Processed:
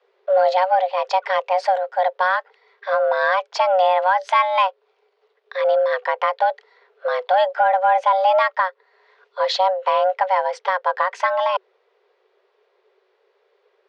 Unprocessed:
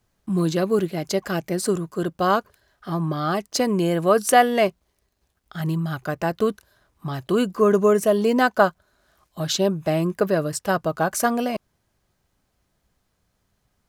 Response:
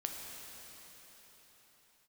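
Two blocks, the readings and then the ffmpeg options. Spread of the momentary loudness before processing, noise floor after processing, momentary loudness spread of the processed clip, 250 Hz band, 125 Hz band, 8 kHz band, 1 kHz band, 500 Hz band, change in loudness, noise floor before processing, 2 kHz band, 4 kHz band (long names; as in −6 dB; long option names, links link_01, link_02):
10 LU, −66 dBFS, 8 LU, below −35 dB, below −35 dB, below −15 dB, +7.5 dB, +2.0 dB, +2.5 dB, −72 dBFS, +4.5 dB, +1.5 dB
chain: -af "lowpass=frequency=3600:width=0.5412,lowpass=frequency=3600:width=1.3066,afreqshift=370,alimiter=limit=-14dB:level=0:latency=1:release=347,acontrast=76"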